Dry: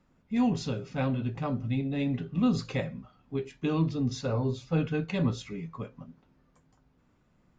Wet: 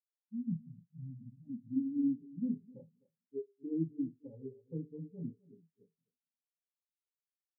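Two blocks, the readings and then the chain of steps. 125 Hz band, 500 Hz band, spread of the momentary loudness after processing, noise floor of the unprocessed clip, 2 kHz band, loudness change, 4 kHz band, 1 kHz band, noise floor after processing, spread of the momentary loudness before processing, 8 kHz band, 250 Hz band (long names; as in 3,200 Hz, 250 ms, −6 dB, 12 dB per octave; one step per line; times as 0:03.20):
−15.5 dB, −14.0 dB, 15 LU, −68 dBFS, below −40 dB, −9.0 dB, below −40 dB, below −40 dB, below −85 dBFS, 12 LU, can't be measured, −8.0 dB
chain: samples in bit-reversed order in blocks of 32 samples
low-pass filter sweep 180 Hz → 400 Hz, 0:00.99–0:02.24
low-pass with resonance 850 Hz, resonance Q 3.6
low-shelf EQ 86 Hz −11.5 dB
mains-hum notches 50/100/150/200/250/300/350/400/450 Hz
on a send: multi-tap delay 63/257 ms −19/−8.5 dB
on the sum: every bin expanded away from the loudest bin 2.5 to 1
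level −9 dB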